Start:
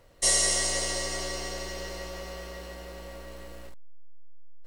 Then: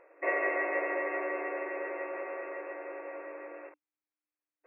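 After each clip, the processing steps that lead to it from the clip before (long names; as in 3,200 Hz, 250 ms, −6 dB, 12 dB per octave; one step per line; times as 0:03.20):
brick-wall band-pass 300–2,700 Hz
level +3 dB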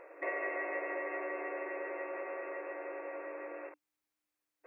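downward compressor 2 to 1, threshold −51 dBFS, peak gain reduction 14 dB
level +6 dB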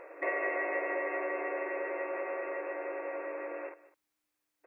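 single-tap delay 202 ms −18.5 dB
level +4 dB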